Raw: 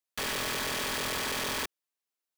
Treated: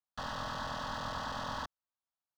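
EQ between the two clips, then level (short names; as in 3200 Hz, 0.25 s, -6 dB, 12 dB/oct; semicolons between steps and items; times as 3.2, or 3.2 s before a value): air absorption 220 m; fixed phaser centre 950 Hz, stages 4; +1.0 dB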